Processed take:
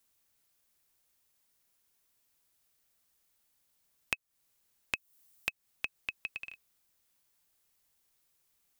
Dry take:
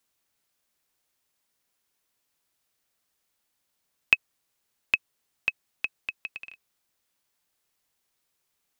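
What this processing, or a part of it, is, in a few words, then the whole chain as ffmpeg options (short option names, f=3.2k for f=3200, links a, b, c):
ASMR close-microphone chain: -filter_complex "[0:a]asettb=1/sr,asplit=3[a][b][c];[a]atrim=end=4.954[d];[b]atrim=start=4.95:end=5.49,asetpts=PTS-STARTPTS,afade=t=in:d=0.004:c=qsin,afade=t=out:st=0.536:d=0.004:c=qsin,highshelf=f=6.5k:g=10[e];[c]atrim=start=5.486[f];[d][e]acrossfade=d=0.004:c1=hsin:c2=qsin[g];[g][f]acrossfade=d=0.004:c1=qsin:c2=hsin,lowshelf=f=120:g=7.5,acompressor=threshold=-30dB:ratio=6,highshelf=f=7.4k:g=7,volume=-2dB"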